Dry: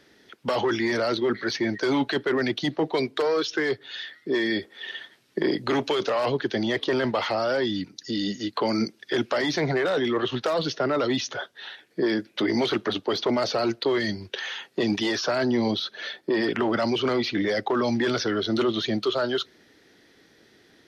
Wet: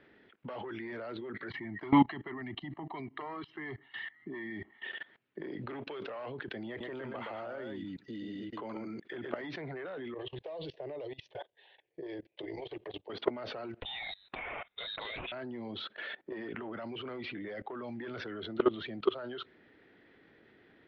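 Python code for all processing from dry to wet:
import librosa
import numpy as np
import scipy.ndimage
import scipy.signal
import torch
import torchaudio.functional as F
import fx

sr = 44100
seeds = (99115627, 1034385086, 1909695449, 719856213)

y = fx.chain(x, sr, fx.air_absorb(metres=220.0),
    fx.comb(ms=1.0, depth=0.93), at=(1.5, 4.84))
y = fx.chain(y, sr, fx.echo_single(ms=122, db=-4.5),
    fx.resample_bad(factor=4, down='filtered', up='hold'), at=(6.68, 9.42))
y = fx.chain(y, sr, fx.level_steps(step_db=11),
    fx.fixed_phaser(hz=560.0, stages=4), at=(10.14, 13.1))
y = fx.chain(y, sr, fx.freq_invert(carrier_hz=4000),
    fx.doppler_dist(depth_ms=0.31), at=(13.82, 15.32))
y = scipy.signal.sosfilt(scipy.signal.butter(4, 2800.0, 'lowpass', fs=sr, output='sos'), y)
y = fx.level_steps(y, sr, step_db=21)
y = y * librosa.db_to_amplitude(1.0)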